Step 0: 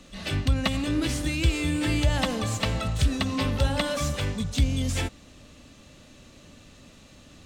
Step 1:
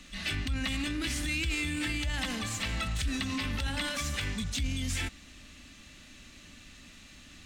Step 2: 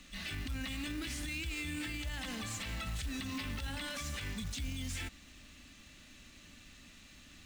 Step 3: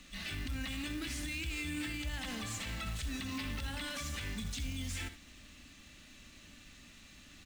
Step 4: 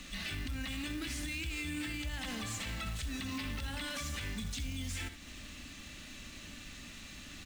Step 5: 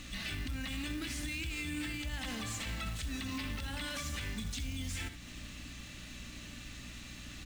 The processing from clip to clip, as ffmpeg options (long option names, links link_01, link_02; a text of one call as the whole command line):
ffmpeg -i in.wav -af "alimiter=limit=-23dB:level=0:latency=1:release=16,equalizer=frequency=125:width_type=o:width=1:gain=-9,equalizer=frequency=500:width_type=o:width=1:gain=-12,equalizer=frequency=1000:width_type=o:width=1:gain=-4,equalizer=frequency=2000:width_type=o:width=1:gain=5,volume=1dB" out.wav
ffmpeg -i in.wav -af "alimiter=level_in=2.5dB:limit=-24dB:level=0:latency=1:release=70,volume=-2.5dB,acrusher=bits=4:mode=log:mix=0:aa=0.000001,volume=-4.5dB" out.wav
ffmpeg -i in.wav -af "aecho=1:1:64|78:0.224|0.168" out.wav
ffmpeg -i in.wav -af "acompressor=threshold=-49dB:ratio=2,volume=7.5dB" out.wav
ffmpeg -i in.wav -af "aeval=exprs='val(0)+0.00316*(sin(2*PI*60*n/s)+sin(2*PI*2*60*n/s)/2+sin(2*PI*3*60*n/s)/3+sin(2*PI*4*60*n/s)/4+sin(2*PI*5*60*n/s)/5)':channel_layout=same" out.wav